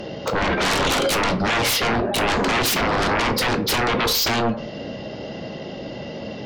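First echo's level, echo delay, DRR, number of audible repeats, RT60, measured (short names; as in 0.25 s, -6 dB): none, none, 8.0 dB, none, 0.50 s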